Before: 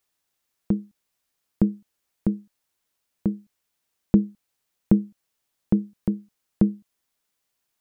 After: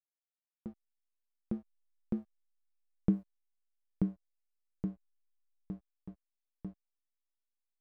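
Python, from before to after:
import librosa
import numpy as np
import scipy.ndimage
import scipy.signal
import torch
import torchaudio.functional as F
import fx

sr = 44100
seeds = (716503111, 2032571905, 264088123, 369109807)

y = fx.doppler_pass(x, sr, speed_mps=22, closest_m=6.1, pass_at_s=2.87)
y = fx.backlash(y, sr, play_db=-43.5)
y = F.gain(torch.from_numpy(y), -1.5).numpy()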